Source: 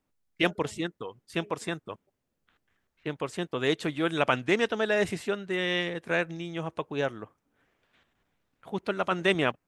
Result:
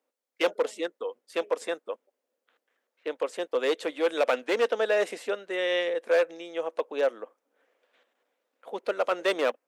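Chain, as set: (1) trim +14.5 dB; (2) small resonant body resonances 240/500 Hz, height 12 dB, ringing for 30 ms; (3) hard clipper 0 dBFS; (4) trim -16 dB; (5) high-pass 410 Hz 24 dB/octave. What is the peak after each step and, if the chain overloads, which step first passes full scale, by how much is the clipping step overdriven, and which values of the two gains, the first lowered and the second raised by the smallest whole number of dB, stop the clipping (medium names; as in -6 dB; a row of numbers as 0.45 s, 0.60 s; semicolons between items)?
+7.0 dBFS, +9.5 dBFS, 0.0 dBFS, -16.0 dBFS, -11.5 dBFS; step 1, 9.5 dB; step 1 +4.5 dB, step 4 -6 dB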